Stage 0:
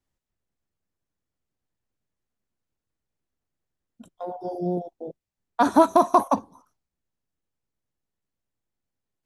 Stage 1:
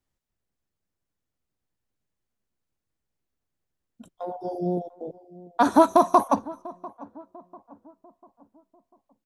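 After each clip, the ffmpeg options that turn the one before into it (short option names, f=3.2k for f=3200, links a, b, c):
-filter_complex "[0:a]asplit=2[a][b];[b]adelay=695,lowpass=f=1.1k:p=1,volume=-19dB,asplit=2[c][d];[d]adelay=695,lowpass=f=1.1k:p=1,volume=0.49,asplit=2[e][f];[f]adelay=695,lowpass=f=1.1k:p=1,volume=0.49,asplit=2[g][h];[h]adelay=695,lowpass=f=1.1k:p=1,volume=0.49[i];[a][c][e][g][i]amix=inputs=5:normalize=0"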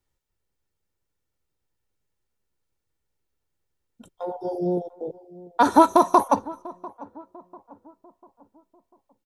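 -af "aecho=1:1:2.2:0.38,volume=2dB"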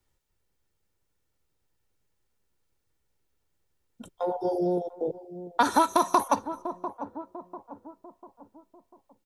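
-filter_complex "[0:a]acrossover=split=370|1300[a][b][c];[a]acompressor=threshold=-36dB:ratio=4[d];[b]acompressor=threshold=-30dB:ratio=4[e];[c]acompressor=threshold=-27dB:ratio=4[f];[d][e][f]amix=inputs=3:normalize=0,volume=3.5dB"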